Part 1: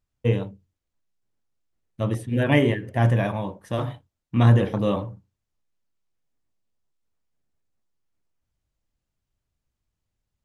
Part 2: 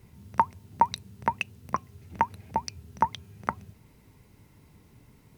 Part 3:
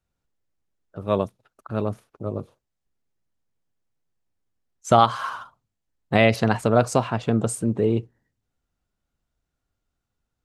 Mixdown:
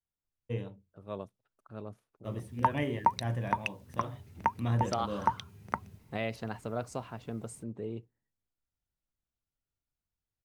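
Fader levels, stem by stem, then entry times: -14.0, -4.0, -17.5 dB; 0.25, 2.25, 0.00 s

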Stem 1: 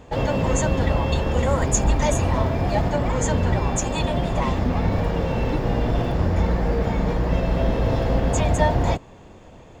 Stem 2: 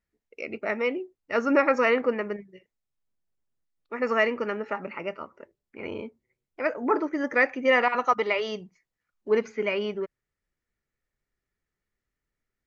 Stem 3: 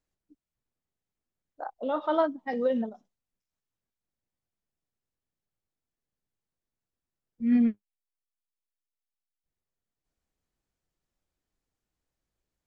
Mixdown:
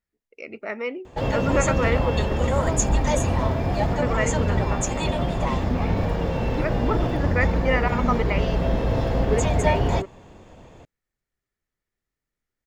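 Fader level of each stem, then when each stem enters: -1.5, -2.5, -7.0 dB; 1.05, 0.00, 0.50 s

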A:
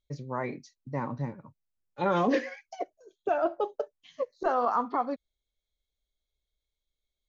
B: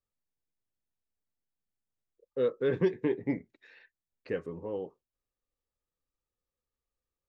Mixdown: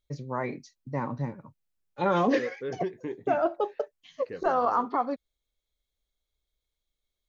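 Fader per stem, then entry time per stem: +1.5, -6.0 dB; 0.00, 0.00 s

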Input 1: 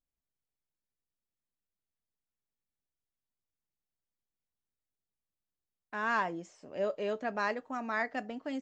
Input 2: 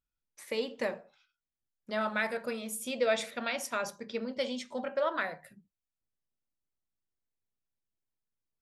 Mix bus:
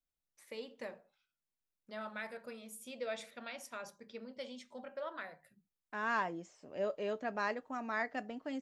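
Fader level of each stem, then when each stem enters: -3.5, -12.0 dB; 0.00, 0.00 s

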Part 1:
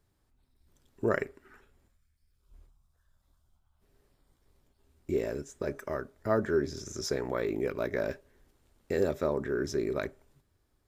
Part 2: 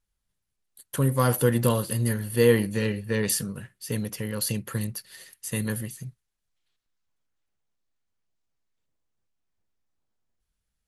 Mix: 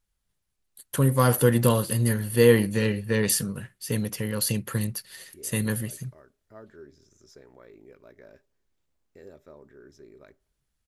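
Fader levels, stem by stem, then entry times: -19.5, +2.0 dB; 0.25, 0.00 s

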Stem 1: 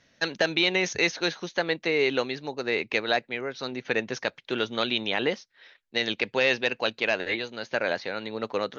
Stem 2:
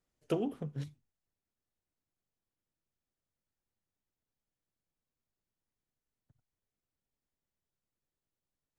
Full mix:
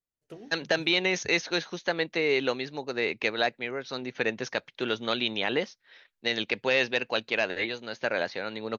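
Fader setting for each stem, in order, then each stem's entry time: -1.5, -13.0 dB; 0.30, 0.00 s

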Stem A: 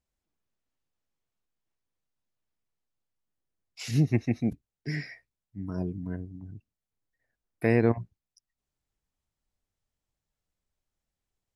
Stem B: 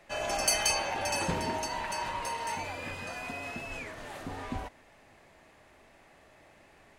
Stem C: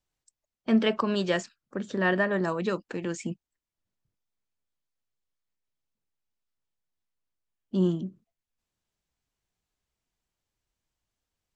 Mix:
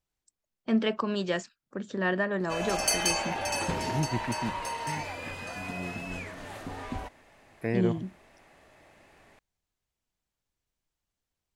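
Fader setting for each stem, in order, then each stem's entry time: -6.5, +0.5, -3.0 dB; 0.00, 2.40, 0.00 s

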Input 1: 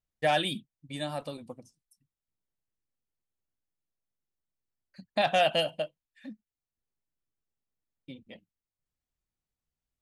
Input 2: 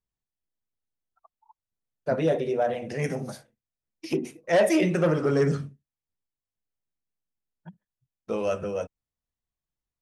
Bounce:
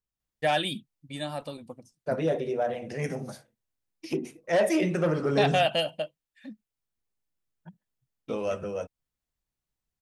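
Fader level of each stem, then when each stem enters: +0.5, -3.0 dB; 0.20, 0.00 s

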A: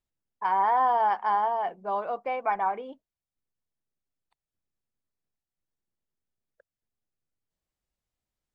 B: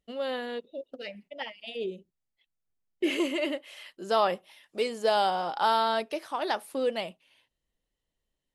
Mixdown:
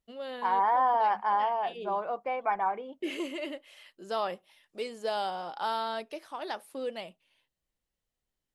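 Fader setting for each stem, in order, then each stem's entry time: -2.0, -7.0 dB; 0.00, 0.00 s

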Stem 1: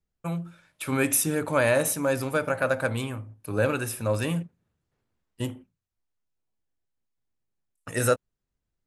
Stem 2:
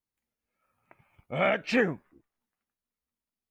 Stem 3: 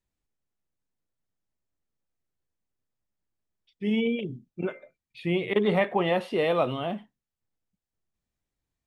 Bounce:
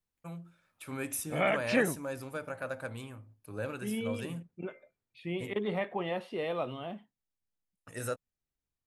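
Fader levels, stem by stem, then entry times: -13.0, -3.0, -9.5 dB; 0.00, 0.00, 0.00 s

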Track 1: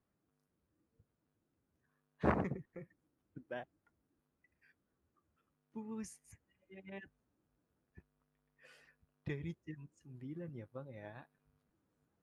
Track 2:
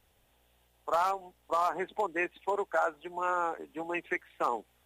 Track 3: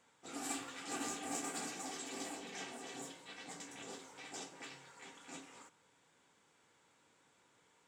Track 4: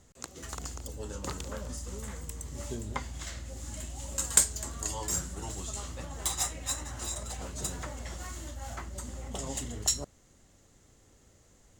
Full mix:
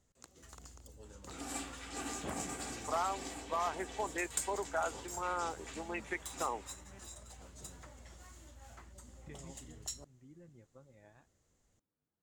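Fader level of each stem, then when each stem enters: -11.0, -6.5, -0.5, -14.5 dB; 0.00, 2.00, 1.05, 0.00 s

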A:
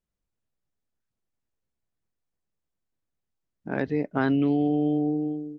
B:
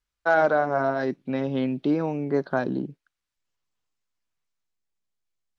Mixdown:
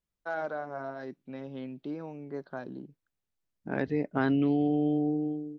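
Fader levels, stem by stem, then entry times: -3.0, -14.0 dB; 0.00, 0.00 s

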